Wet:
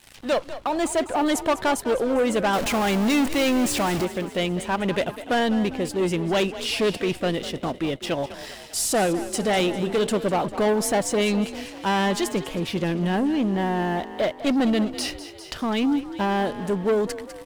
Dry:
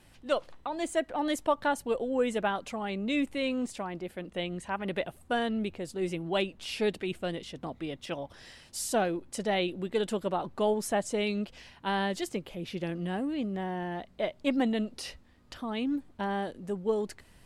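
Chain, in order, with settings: 2.53–4.05 s: jump at every zero crossing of -35.5 dBFS; 9.06–10.07 s: de-hum 49.2 Hz, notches 27; waveshaping leveller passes 3; frequency-shifting echo 200 ms, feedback 52%, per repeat +39 Hz, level -14 dB; tape noise reduction on one side only encoder only

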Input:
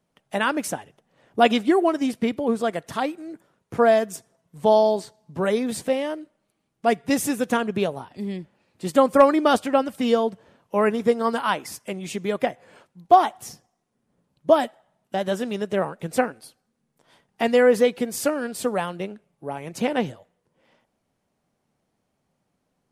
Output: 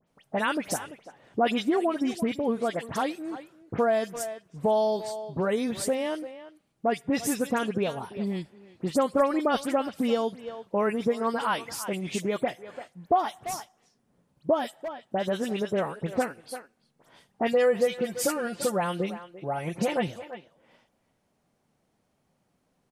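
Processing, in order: 17.52–20.08 s: comb 5.7 ms, depth 66%; phase dispersion highs, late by 77 ms, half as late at 2.9 kHz; speakerphone echo 340 ms, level -18 dB; compression 2:1, threshold -29 dBFS, peak gain reduction 11.5 dB; trim +1.5 dB

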